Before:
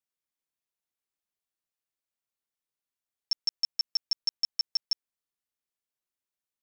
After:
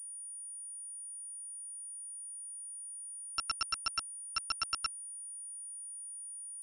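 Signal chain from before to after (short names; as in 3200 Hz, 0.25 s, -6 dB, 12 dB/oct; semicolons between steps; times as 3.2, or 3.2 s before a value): slices in reverse order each 0.137 s, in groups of 4; fixed phaser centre 450 Hz, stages 6; pulse-width modulation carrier 9500 Hz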